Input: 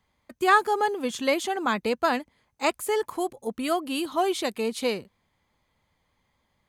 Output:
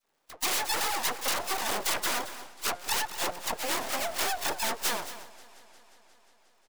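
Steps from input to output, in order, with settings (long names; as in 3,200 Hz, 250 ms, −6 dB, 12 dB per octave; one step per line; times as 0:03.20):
spectral magnitudes quantised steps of 30 dB
octave-band graphic EQ 125/250/500/1,000/2,000/4,000/8,000 Hz −5/+4/+11/−5/+4/−9/−6 dB
sample-and-hold swept by an LFO 34×, swing 100% 3.2 Hz
hum removal 177 Hz, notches 8
all-pass dispersion lows, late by 52 ms, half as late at 620 Hz
wrap-around overflow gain 14 dB
downward compressor, threshold −22 dBFS, peak gain reduction 6 dB
full-wave rectification
bass and treble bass −14 dB, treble +4 dB
on a send: single-tap delay 223 ms −13.5 dB
on the sum: feedback echo with a swinging delay time 178 ms, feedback 77%, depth 105 cents, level −22 dB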